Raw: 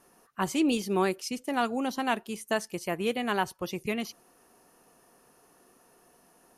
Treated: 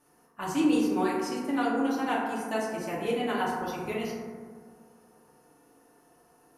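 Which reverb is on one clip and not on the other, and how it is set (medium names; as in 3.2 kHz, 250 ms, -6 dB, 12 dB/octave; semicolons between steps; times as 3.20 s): FDN reverb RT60 1.8 s, low-frequency decay 1.25×, high-frequency decay 0.3×, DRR -6.5 dB; trim -8 dB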